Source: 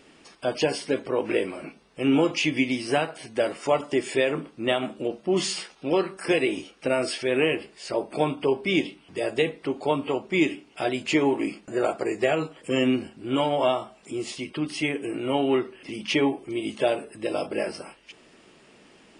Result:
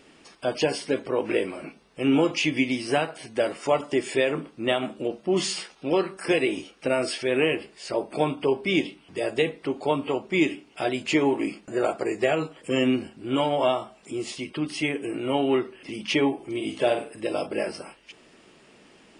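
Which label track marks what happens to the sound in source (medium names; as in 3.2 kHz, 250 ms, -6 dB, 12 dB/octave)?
16.350000	17.210000	flutter echo walls apart 8.5 m, dies away in 0.35 s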